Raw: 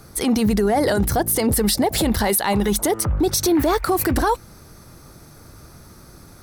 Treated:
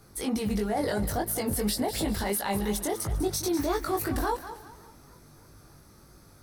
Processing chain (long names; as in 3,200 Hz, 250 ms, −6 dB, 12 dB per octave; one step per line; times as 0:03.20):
feedback echo with a high-pass in the loop 199 ms, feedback 38%, high-pass 520 Hz, level −10.5 dB
chorus effect 2.9 Hz, delay 18.5 ms, depth 2.7 ms
feedback echo with a swinging delay time 281 ms, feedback 57%, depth 175 cents, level −23 dB
level −7 dB